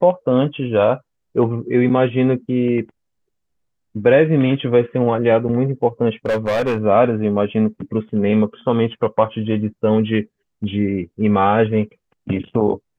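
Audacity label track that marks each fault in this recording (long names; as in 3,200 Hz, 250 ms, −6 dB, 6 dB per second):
6.250000	6.840000	clipping −15 dBFS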